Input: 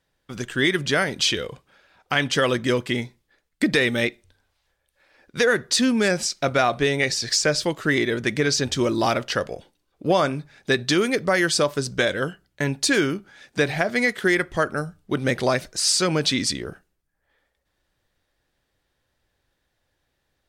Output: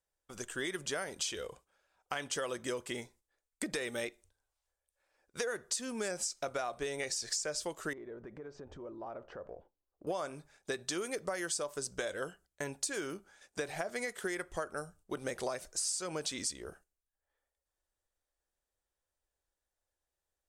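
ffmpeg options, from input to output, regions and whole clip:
ffmpeg -i in.wav -filter_complex "[0:a]asettb=1/sr,asplit=3[link_01][link_02][link_03];[link_01]atrim=end=7.934[link_04];[link_02]atrim=start=7.93:end=10.07,asetpts=PTS-STARTPTS,afade=type=in:duration=0.004:curve=qsin,afade=type=out:start_time=2.136:duration=0.004:curve=qsin,lowpass=1000,acompressor=threshold=-30dB:ratio=8:attack=3.2:release=140:knee=1:detection=peak[link_05];[link_03]atrim=start=10.066[link_06];[link_04][link_05]acrossfade=duration=0.004:curve1=hsin:curve2=qsin[link_07];[link_07][link_06]acrossfade=duration=0.004:curve1=qsin:curve2=hsin,agate=range=-7dB:threshold=-47dB:ratio=16:detection=peak,equalizer=frequency=125:width_type=o:width=1:gain=-12,equalizer=frequency=250:width_type=o:width=1:gain=-8,equalizer=frequency=2000:width_type=o:width=1:gain=-6,equalizer=frequency=4000:width_type=o:width=1:gain=-7,equalizer=frequency=8000:width_type=o:width=1:gain=8,acompressor=threshold=-26dB:ratio=6,volume=-7dB" out.wav

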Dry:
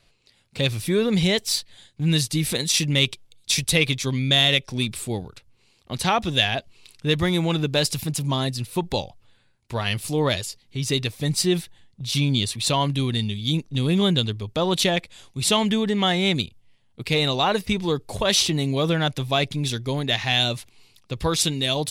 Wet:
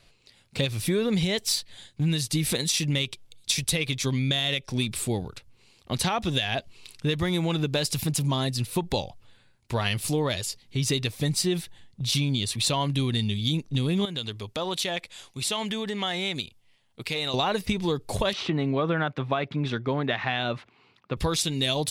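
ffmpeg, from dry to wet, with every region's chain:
ffmpeg -i in.wav -filter_complex "[0:a]asettb=1/sr,asplit=3[link_01][link_02][link_03];[link_01]atrim=end=14.054[link_04];[link_02]atrim=start=14.05:end=17.34,asetpts=PTS-STARTPTS,afade=type=in:duration=0.004:curve=qsin,afade=type=out:start_time=3.286:duration=0.004:curve=qsin,lowshelf=frequency=340:gain=-10,acompressor=threshold=-33dB:ratio=2:attack=3.2:release=140:knee=1:detection=peak[link_05];[link_03]atrim=start=17.336[link_06];[link_04][link_05]acrossfade=duration=0.004:curve1=hsin:curve2=qsin[link_07];[link_07][link_06]acrossfade=duration=0.004:curve1=qsin:curve2=hsin,asettb=1/sr,asplit=3[link_08][link_09][link_10];[link_08]atrim=end=18.334[link_11];[link_09]atrim=start=18.33:end=21.17,asetpts=PTS-STARTPTS,afade=type=in:duration=0.004:curve=qsin,afade=type=out:start_time=2.836:duration=0.004:curve=qsin,highpass=150,lowpass=2100,equalizer=frequency=1300:width=1.7:gain=6.5[link_12];[link_10]atrim=start=21.166[link_13];[link_11][link_12]acrossfade=duration=0.004:curve1=hsin:curve2=qsin[link_14];[link_14][link_13]acrossfade=duration=0.004:curve1=qsin:curve2=hsin,alimiter=limit=-11.5dB:level=0:latency=1:release=273,acompressor=threshold=-25dB:ratio=4,volume=2.5dB" out.wav

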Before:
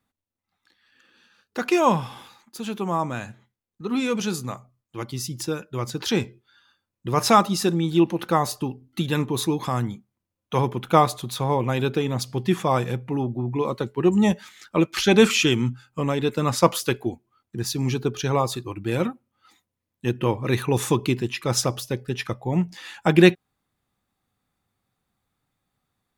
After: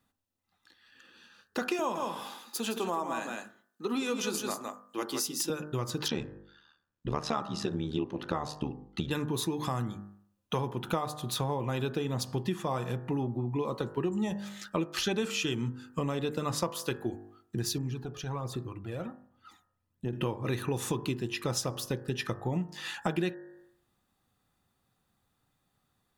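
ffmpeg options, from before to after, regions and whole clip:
ffmpeg -i in.wav -filter_complex "[0:a]asettb=1/sr,asplit=3[link_01][link_02][link_03];[link_01]atrim=end=1.794[link_04];[link_02]atrim=start=1.79:end=5.5,asetpts=PTS-STARTPTS,afade=type=in:duration=0.004:curve=qsin,afade=type=out:start_time=3.706:duration=0.004:curve=qsin,highpass=frequency=240:width=0.5412,highpass=frequency=240:width=1.3066,highshelf=frequency=7100:gain=5,aecho=1:1:163:0.473,atrim=end_sample=163611[link_05];[link_03]atrim=start=5.496[link_06];[link_04][link_05]acrossfade=duration=0.004:curve1=hsin:curve2=qsin[link_07];[link_07][link_06]acrossfade=duration=0.004:curve1=qsin:curve2=hsin,asettb=1/sr,asplit=3[link_08][link_09][link_10];[link_08]atrim=end=6.084[link_11];[link_09]atrim=start=6.08:end=9.11,asetpts=PTS-STARTPTS,afade=type=in:duration=0.004:curve=qsin,afade=type=out:start_time=3.026:duration=0.004:curve=qsin,lowpass=5100,tremolo=f=75:d=0.889[link_12];[link_10]atrim=start=9.106[link_13];[link_11][link_12]acrossfade=duration=0.004:curve1=hsin:curve2=qsin[link_14];[link_14][link_13]acrossfade=duration=0.004:curve1=qsin:curve2=hsin,asettb=1/sr,asplit=3[link_15][link_16][link_17];[link_15]atrim=end=17.784[link_18];[link_16]atrim=start=17.78:end=20.13,asetpts=PTS-STARTPTS,afade=type=in:duration=0.004:curve=qsin,afade=type=out:start_time=2.346:duration=0.004:curve=qsin,highshelf=frequency=2100:gain=-8.5,acompressor=threshold=-46dB:ratio=2:attack=3.2:release=140:knee=1:detection=peak,aphaser=in_gain=1:out_gain=1:delay=1.8:decay=0.55:speed=1.3:type=triangular[link_19];[link_17]atrim=start=20.126[link_20];[link_18][link_19]acrossfade=duration=0.004:curve1=hsin:curve2=qsin[link_21];[link_21][link_20]acrossfade=duration=0.004:curve1=qsin:curve2=hsin,bandreject=frequency=2200:width=9.2,bandreject=frequency=50.33:width_type=h:width=4,bandreject=frequency=100.66:width_type=h:width=4,bandreject=frequency=150.99:width_type=h:width=4,bandreject=frequency=201.32:width_type=h:width=4,bandreject=frequency=251.65:width_type=h:width=4,bandreject=frequency=301.98:width_type=h:width=4,bandreject=frequency=352.31:width_type=h:width=4,bandreject=frequency=402.64:width_type=h:width=4,bandreject=frequency=452.97:width_type=h:width=4,bandreject=frequency=503.3:width_type=h:width=4,bandreject=frequency=553.63:width_type=h:width=4,bandreject=frequency=603.96:width_type=h:width=4,bandreject=frequency=654.29:width_type=h:width=4,bandreject=frequency=704.62:width_type=h:width=4,bandreject=frequency=754.95:width_type=h:width=4,bandreject=frequency=805.28:width_type=h:width=4,bandreject=frequency=855.61:width_type=h:width=4,bandreject=frequency=905.94:width_type=h:width=4,bandreject=frequency=956.27:width_type=h:width=4,bandreject=frequency=1006.6:width_type=h:width=4,bandreject=frequency=1056.93:width_type=h:width=4,bandreject=frequency=1107.26:width_type=h:width=4,bandreject=frequency=1157.59:width_type=h:width=4,bandreject=frequency=1207.92:width_type=h:width=4,bandreject=frequency=1258.25:width_type=h:width=4,bandreject=frequency=1308.58:width_type=h:width=4,bandreject=frequency=1358.91:width_type=h:width=4,bandreject=frequency=1409.24:width_type=h:width=4,bandreject=frequency=1459.57:width_type=h:width=4,bandreject=frequency=1509.9:width_type=h:width=4,bandreject=frequency=1560.23:width_type=h:width=4,bandreject=frequency=1610.56:width_type=h:width=4,bandreject=frequency=1660.89:width_type=h:width=4,bandreject=frequency=1711.22:width_type=h:width=4,bandreject=frequency=1761.55:width_type=h:width=4,bandreject=frequency=1811.88:width_type=h:width=4,bandreject=frequency=1862.21:width_type=h:width=4,acompressor=threshold=-31dB:ratio=6,volume=2dB" out.wav

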